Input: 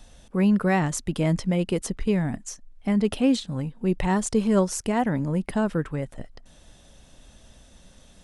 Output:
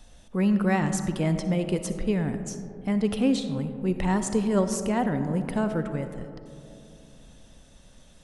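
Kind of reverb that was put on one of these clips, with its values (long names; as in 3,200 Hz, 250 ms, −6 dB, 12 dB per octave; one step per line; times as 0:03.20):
comb and all-pass reverb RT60 2.8 s, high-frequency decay 0.25×, pre-delay 20 ms, DRR 8.5 dB
level −2.5 dB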